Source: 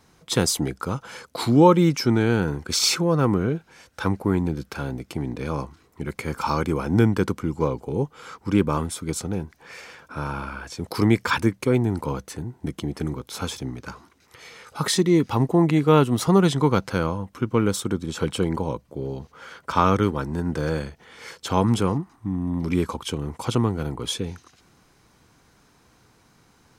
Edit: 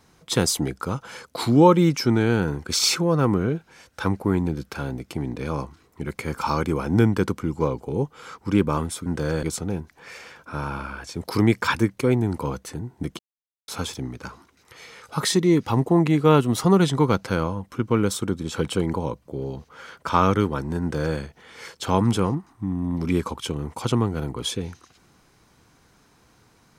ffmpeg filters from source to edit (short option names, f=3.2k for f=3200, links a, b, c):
-filter_complex "[0:a]asplit=5[a][b][c][d][e];[a]atrim=end=9.062[f];[b]atrim=start=20.438:end=20.812[g];[c]atrim=start=9.058:end=12.82,asetpts=PTS-STARTPTS,afade=t=out:st=3.758:d=0.004:c=hsin[h];[d]atrim=start=12.82:end=13.31,asetpts=PTS-STARTPTS,volume=0[i];[e]atrim=start=13.31,asetpts=PTS-STARTPTS,afade=t=in:d=0.004:c=hsin[j];[f][g]acrossfade=d=0.004:c1=hsin:c2=hsin[k];[h][i][j]concat=n=3:v=0:a=1[l];[k][l]acrossfade=d=0.004:c1=hsin:c2=hsin"